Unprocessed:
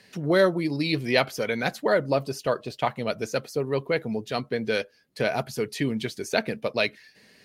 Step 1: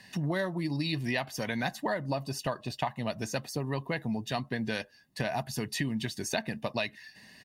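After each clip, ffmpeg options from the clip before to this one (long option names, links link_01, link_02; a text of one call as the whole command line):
ffmpeg -i in.wav -af "aecho=1:1:1.1:0.68,acompressor=threshold=-28dB:ratio=6" out.wav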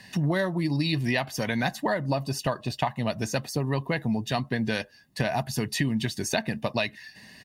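ffmpeg -i in.wav -af "equalizer=frequency=70:width_type=o:width=2.7:gain=3,volume=4.5dB" out.wav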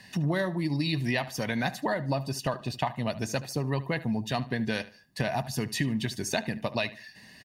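ffmpeg -i in.wav -filter_complex "[0:a]asplit=2[link_01][link_02];[link_02]adelay=74,lowpass=frequency=4700:poles=1,volume=-16.5dB,asplit=2[link_03][link_04];[link_04]adelay=74,lowpass=frequency=4700:poles=1,volume=0.31,asplit=2[link_05][link_06];[link_06]adelay=74,lowpass=frequency=4700:poles=1,volume=0.31[link_07];[link_01][link_03][link_05][link_07]amix=inputs=4:normalize=0,volume=-2.5dB" out.wav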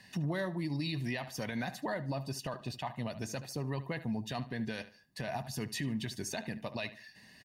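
ffmpeg -i in.wav -af "alimiter=limit=-20.5dB:level=0:latency=1:release=18,volume=-6dB" out.wav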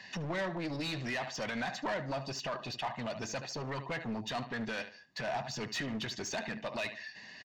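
ffmpeg -i in.wav -filter_complex "[0:a]aresample=16000,aeval=exprs='clip(val(0),-1,0.015)':channel_layout=same,aresample=44100,asplit=2[link_01][link_02];[link_02]highpass=frequency=720:poles=1,volume=15dB,asoftclip=type=tanh:threshold=-26dB[link_03];[link_01][link_03]amix=inputs=2:normalize=0,lowpass=frequency=3700:poles=1,volume=-6dB" out.wav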